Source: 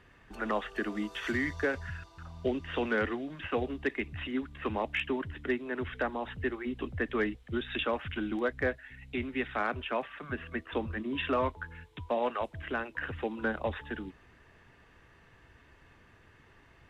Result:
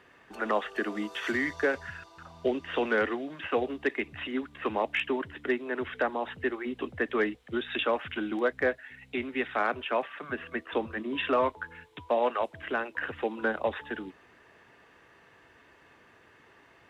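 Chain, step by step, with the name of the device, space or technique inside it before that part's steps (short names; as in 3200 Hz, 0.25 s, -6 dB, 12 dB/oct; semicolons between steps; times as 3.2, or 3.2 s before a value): filter by subtraction (in parallel: LPF 480 Hz 12 dB/oct + phase invert); on the sum: gain +2.5 dB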